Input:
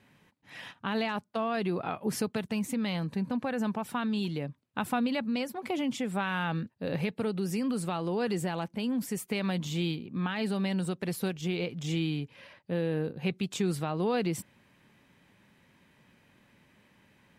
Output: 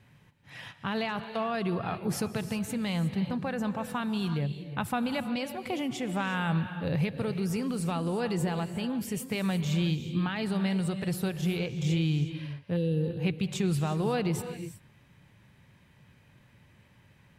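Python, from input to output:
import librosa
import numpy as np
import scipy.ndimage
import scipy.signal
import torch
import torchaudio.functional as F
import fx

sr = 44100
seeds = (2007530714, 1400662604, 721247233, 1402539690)

y = fx.low_shelf_res(x, sr, hz=170.0, db=8.0, q=1.5)
y = fx.spec_box(y, sr, start_s=12.77, length_s=0.33, low_hz=560.0, high_hz=2600.0, gain_db=-18)
y = fx.rev_gated(y, sr, seeds[0], gate_ms=390, shape='rising', drr_db=9.5)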